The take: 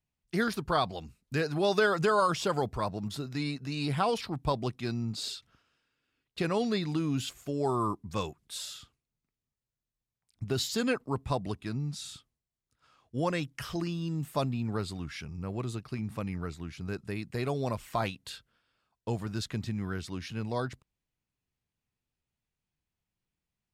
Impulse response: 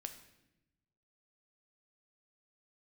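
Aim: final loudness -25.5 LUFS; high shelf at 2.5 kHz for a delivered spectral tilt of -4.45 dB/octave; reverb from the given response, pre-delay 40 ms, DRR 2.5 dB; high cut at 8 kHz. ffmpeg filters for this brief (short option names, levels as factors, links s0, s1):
-filter_complex "[0:a]lowpass=8000,highshelf=f=2500:g=8,asplit=2[s0][s1];[1:a]atrim=start_sample=2205,adelay=40[s2];[s1][s2]afir=irnorm=-1:irlink=0,volume=1.12[s3];[s0][s3]amix=inputs=2:normalize=0,volume=1.58"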